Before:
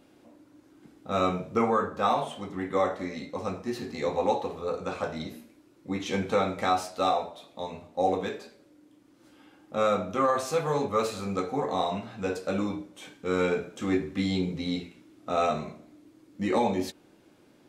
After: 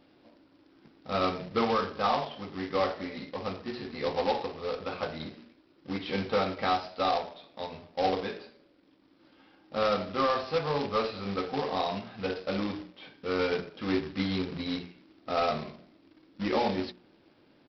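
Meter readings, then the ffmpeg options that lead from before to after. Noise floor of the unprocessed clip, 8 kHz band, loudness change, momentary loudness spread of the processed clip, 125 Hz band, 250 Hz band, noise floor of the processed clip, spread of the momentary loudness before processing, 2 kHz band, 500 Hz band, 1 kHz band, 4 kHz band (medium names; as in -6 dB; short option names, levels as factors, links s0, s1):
-59 dBFS, under -10 dB, -2.0 dB, 12 LU, -3.0 dB, -3.0 dB, -63 dBFS, 12 LU, 0.0 dB, -2.5 dB, -2.0 dB, +2.0 dB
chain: -af "bandreject=f=60:t=h:w=6,bandreject=f=120:t=h:w=6,bandreject=f=180:t=h:w=6,bandreject=f=240:t=h:w=6,bandreject=f=300:t=h:w=6,bandreject=f=360:t=h:w=6,bandreject=f=420:t=h:w=6,aresample=11025,acrusher=bits=2:mode=log:mix=0:aa=0.000001,aresample=44100,volume=0.75"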